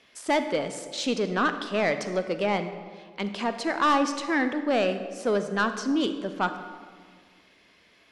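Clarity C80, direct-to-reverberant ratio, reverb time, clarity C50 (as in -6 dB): 10.5 dB, 9.0 dB, 1.8 s, 9.5 dB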